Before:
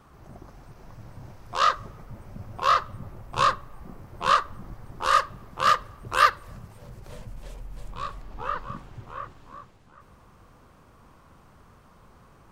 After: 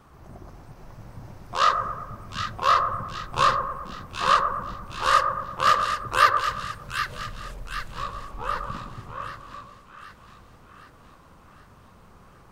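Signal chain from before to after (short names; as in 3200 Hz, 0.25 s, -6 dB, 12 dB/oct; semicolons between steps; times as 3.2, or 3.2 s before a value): split-band echo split 1400 Hz, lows 0.114 s, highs 0.768 s, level -6 dB; gain +1 dB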